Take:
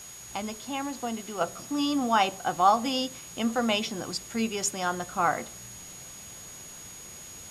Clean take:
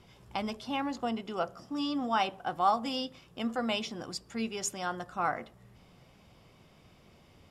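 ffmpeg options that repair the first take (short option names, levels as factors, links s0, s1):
-af "bandreject=f=6700:w=30,afwtdn=0.0045,asetnsamples=n=441:p=0,asendcmd='1.41 volume volume -5.5dB',volume=1"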